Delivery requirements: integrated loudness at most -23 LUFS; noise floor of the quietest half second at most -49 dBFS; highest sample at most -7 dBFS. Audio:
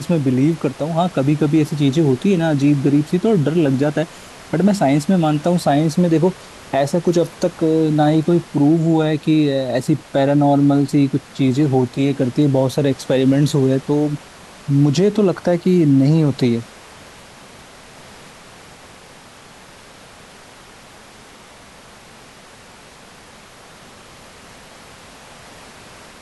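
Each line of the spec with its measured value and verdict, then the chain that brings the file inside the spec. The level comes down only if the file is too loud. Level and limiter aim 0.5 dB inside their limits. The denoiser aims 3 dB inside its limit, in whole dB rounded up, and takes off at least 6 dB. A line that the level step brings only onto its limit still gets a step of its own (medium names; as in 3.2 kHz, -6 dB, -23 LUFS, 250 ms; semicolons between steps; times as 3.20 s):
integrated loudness -16.5 LUFS: fail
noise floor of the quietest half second -42 dBFS: fail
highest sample -5.5 dBFS: fail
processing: noise reduction 6 dB, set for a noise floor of -42 dBFS; trim -7 dB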